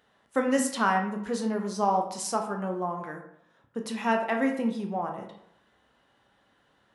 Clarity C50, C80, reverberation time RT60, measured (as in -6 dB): 7.5 dB, 10.5 dB, 0.75 s